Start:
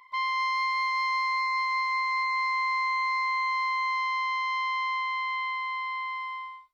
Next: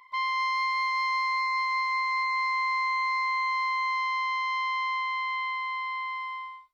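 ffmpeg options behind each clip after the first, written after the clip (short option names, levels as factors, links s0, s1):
-af anull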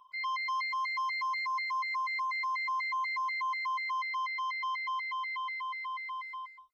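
-af "afftfilt=real='re*gt(sin(2*PI*4.1*pts/sr)*(1-2*mod(floor(b*sr/1024/1300),2)),0)':imag='im*gt(sin(2*PI*4.1*pts/sr)*(1-2*mod(floor(b*sr/1024/1300),2)),0)':win_size=1024:overlap=0.75,volume=0.75"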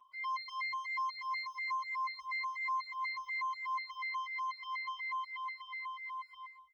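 -filter_complex "[0:a]asplit=2[s0][s1];[s1]adelay=947,lowpass=f=820:p=1,volume=0.15,asplit=2[s2][s3];[s3]adelay=947,lowpass=f=820:p=1,volume=0.34,asplit=2[s4][s5];[s5]adelay=947,lowpass=f=820:p=1,volume=0.34[s6];[s0][s2][s4][s6]amix=inputs=4:normalize=0,asplit=2[s7][s8];[s8]adelay=5.2,afreqshift=2.9[s9];[s7][s9]amix=inputs=2:normalize=1,volume=0.794"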